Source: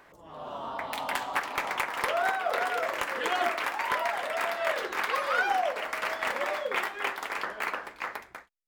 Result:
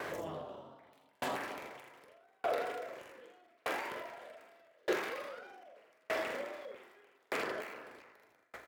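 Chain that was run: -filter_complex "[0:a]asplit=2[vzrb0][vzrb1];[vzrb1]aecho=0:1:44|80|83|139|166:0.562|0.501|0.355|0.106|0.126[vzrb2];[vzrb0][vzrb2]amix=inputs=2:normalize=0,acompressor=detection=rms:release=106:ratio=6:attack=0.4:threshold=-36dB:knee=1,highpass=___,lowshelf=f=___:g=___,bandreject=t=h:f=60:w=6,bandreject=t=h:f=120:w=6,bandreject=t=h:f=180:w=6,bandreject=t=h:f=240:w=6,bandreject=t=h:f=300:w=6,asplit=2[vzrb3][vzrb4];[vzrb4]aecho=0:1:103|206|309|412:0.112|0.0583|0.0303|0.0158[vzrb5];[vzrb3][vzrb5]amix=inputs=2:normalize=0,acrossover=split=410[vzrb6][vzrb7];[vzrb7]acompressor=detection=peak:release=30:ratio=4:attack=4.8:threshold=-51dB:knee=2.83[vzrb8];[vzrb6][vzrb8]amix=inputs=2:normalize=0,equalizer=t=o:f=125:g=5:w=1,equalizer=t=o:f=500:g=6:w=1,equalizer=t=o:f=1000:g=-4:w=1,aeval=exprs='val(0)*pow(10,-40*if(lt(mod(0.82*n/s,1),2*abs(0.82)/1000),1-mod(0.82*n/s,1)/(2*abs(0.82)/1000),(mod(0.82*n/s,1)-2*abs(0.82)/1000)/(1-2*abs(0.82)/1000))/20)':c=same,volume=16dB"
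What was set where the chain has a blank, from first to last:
49, 95, -8.5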